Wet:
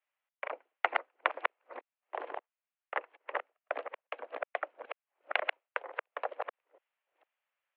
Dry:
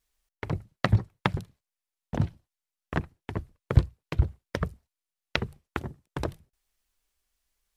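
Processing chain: chunks repeated in reverse 452 ms, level -2 dB; mistuned SSB +150 Hz 380–2700 Hz; trim -1.5 dB

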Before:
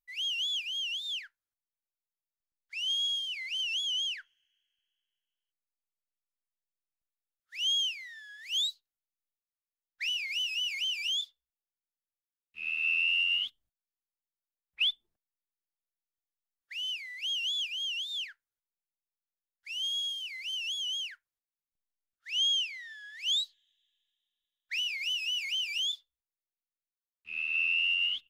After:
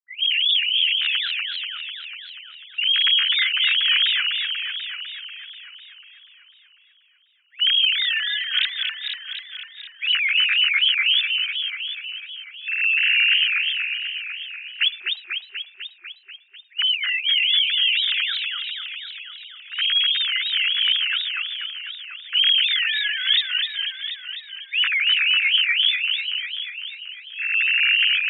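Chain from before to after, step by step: formants replaced by sine waves; peaking EQ 1.6 kHz +8 dB 0.79 oct; in parallel at +1 dB: peak limiter -25 dBFS, peak gain reduction 7 dB; on the sum: peaking EQ 520 Hz -15 dB 0.22 oct; reverse; upward compressor, threshold -35 dBFS; reverse; level-controlled noise filter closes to 450 Hz, open at -20 dBFS; modulated delay 246 ms, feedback 69%, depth 203 cents, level -5 dB; trim +4 dB

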